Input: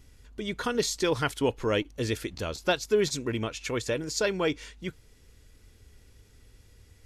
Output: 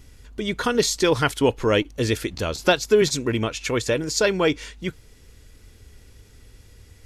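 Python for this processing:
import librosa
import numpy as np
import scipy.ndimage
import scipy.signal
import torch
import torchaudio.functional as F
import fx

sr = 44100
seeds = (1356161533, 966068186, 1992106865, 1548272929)

y = fx.band_squash(x, sr, depth_pct=40, at=(2.59, 3.02))
y = y * 10.0 ** (7.0 / 20.0)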